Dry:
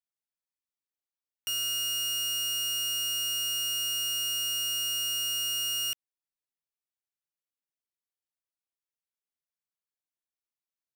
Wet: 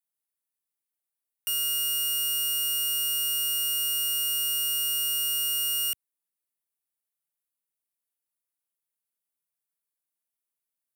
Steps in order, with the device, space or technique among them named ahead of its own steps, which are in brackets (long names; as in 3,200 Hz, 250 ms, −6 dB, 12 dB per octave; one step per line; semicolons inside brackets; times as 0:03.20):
budget condenser microphone (high-pass filter 86 Hz; high shelf with overshoot 7,800 Hz +8 dB, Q 1.5)